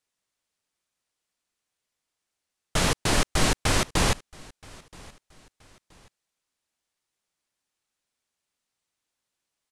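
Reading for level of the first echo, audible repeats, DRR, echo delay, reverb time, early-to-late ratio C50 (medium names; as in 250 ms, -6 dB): -24.0 dB, 2, no reverb, 975 ms, no reverb, no reverb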